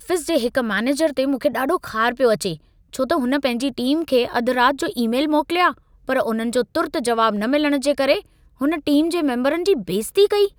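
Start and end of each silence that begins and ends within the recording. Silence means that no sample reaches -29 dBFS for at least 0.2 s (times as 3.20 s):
2.55–2.93 s
5.72–6.09 s
8.20–8.61 s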